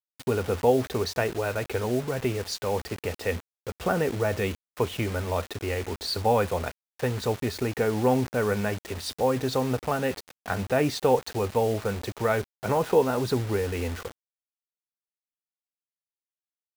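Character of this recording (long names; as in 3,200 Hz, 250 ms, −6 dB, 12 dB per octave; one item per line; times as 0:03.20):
a quantiser's noise floor 6 bits, dither none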